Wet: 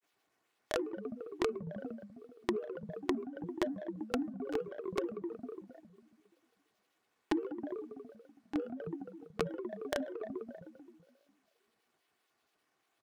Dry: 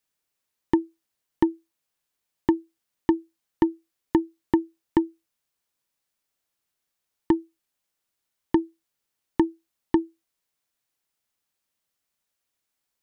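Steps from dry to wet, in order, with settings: median filter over 9 samples; high-pass 200 Hz 12 dB/octave; de-hum 274.5 Hz, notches 8; on a send: filtered feedback delay 67 ms, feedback 79%, low-pass 2.9 kHz, level -23 dB; on the sum: peak limiter -19 dBFS, peak gain reduction 10.5 dB; in parallel at -10.5 dB: saturation -31 dBFS, distortion -8 dB; on the sum: compression 6:1, threshold -41 dBFS, peak gain reduction 16.5 dB; granulator 100 ms, grains 25 per s, spray 20 ms, pitch spread up and down by 12 st; comb 2.7 ms, depth 35%; trim +10 dB

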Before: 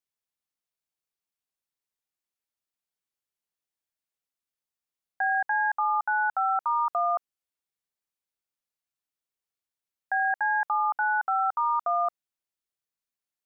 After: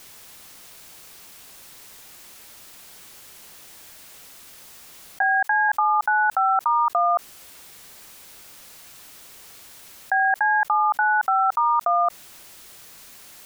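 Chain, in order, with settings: 5.22–5.69 s: high-pass 670 Hz 12 dB/octave; level flattener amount 70%; trim +5.5 dB

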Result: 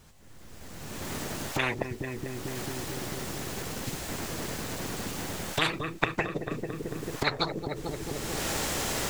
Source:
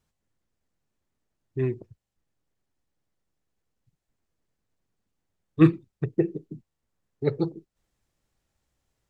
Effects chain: recorder AGC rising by 27 dB/s; multi-head delay 222 ms, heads first and second, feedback 50%, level -24 dB; spectrum-flattening compressor 10:1; trim -4.5 dB

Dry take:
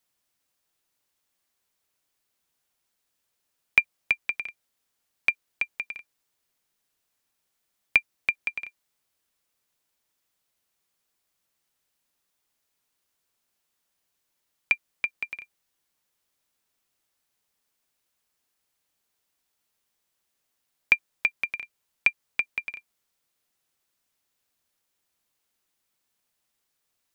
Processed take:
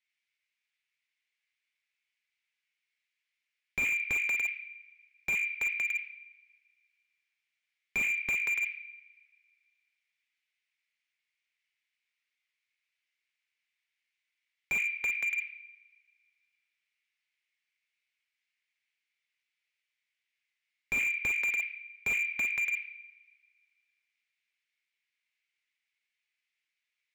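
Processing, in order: ladder band-pass 2.4 kHz, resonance 70%; two-slope reverb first 0.7 s, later 2.1 s, from -21 dB, DRR 1.5 dB; slew-rate limiter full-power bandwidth 59 Hz; trim +4.5 dB

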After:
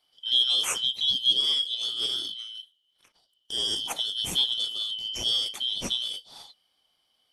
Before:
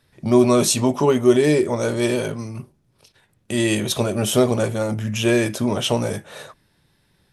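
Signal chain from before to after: four frequency bands reordered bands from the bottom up 3412; trim -9 dB

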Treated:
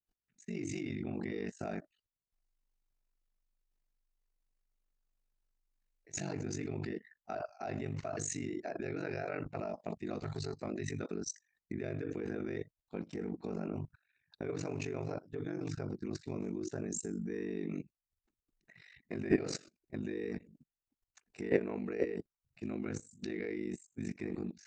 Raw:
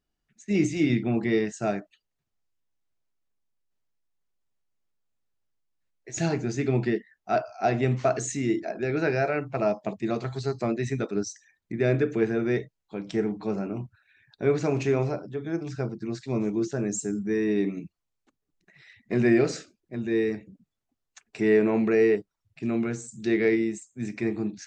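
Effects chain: band-stop 3.3 kHz, Q 12; ring modulator 24 Hz; level held to a coarse grid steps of 21 dB; trim +3 dB

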